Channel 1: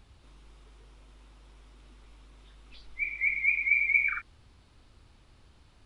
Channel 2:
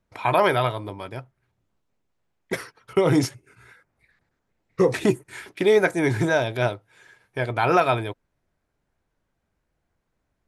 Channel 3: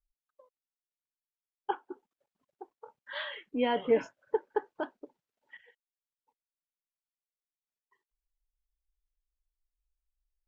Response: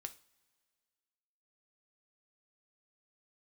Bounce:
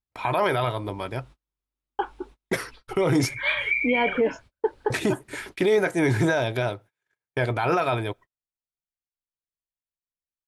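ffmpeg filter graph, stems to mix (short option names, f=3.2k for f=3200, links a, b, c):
-filter_complex "[0:a]volume=-1dB,asplit=2[a][b];[b]volume=-12dB[c];[1:a]volume=-3dB,asplit=3[d][e][f];[d]atrim=end=3.71,asetpts=PTS-STARTPTS,afade=t=out:st=3.706:d=0.004:c=hsin[g];[e]atrim=start=3.71:end=4.9,asetpts=PTS-STARTPTS,volume=0[h];[f]atrim=start=4.9,asetpts=PTS-STARTPTS,afade=t=in:d=0.004:c=hsin[i];[g][h][i]concat=n=3:v=0:a=1,asplit=3[j][k][l];[k]volume=-14.5dB[m];[2:a]adelay=300,volume=2.5dB[n];[l]apad=whole_len=258259[o];[a][o]sidechaincompress=threshold=-34dB:ratio=8:attack=16:release=239[p];[j][n]amix=inputs=2:normalize=0,dynaudnorm=f=140:g=3:m=6dB,alimiter=limit=-10dB:level=0:latency=1:release=294,volume=0dB[q];[3:a]atrim=start_sample=2205[r];[c][m]amix=inputs=2:normalize=0[s];[s][r]afir=irnorm=-1:irlink=0[t];[p][q][t]amix=inputs=3:normalize=0,agate=range=-37dB:threshold=-43dB:ratio=16:detection=peak,alimiter=limit=-13.5dB:level=0:latency=1:release=11"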